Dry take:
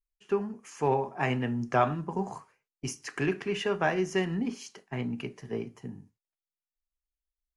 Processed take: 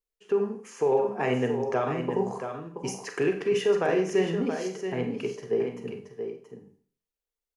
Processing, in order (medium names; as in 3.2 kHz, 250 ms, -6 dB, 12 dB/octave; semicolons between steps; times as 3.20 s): peaking EQ 450 Hz +13.5 dB 0.6 oct; peak limiter -16 dBFS, peak gain reduction 8 dB; bass shelf 110 Hz -8.5 dB; delay 677 ms -8 dB; Schroeder reverb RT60 0.46 s, combs from 32 ms, DRR 6.5 dB